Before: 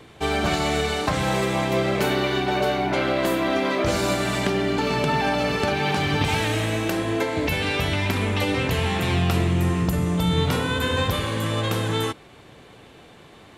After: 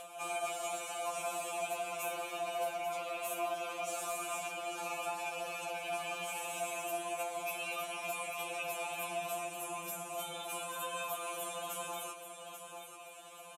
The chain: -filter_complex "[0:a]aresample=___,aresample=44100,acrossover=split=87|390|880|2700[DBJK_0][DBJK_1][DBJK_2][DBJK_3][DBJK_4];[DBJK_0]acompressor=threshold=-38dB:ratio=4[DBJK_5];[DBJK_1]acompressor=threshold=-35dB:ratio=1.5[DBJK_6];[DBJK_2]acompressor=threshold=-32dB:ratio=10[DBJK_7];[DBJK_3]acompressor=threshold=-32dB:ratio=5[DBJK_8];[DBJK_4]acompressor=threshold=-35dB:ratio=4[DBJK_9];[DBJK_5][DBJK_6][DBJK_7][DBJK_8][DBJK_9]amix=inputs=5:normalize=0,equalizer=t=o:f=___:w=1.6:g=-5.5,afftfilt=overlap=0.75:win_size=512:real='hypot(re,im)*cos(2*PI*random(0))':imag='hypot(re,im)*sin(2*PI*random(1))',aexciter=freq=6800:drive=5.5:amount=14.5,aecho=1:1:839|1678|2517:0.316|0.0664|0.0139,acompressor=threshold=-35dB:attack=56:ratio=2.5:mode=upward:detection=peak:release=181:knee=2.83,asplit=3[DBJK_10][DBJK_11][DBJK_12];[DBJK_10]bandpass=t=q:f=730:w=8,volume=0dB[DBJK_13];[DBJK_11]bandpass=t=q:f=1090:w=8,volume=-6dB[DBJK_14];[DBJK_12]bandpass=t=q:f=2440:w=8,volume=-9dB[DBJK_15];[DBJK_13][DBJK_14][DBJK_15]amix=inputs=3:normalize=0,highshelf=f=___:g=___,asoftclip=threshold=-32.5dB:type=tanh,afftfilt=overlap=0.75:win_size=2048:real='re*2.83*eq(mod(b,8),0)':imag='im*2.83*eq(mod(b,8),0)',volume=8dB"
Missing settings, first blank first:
32000, 230, 3900, 10.5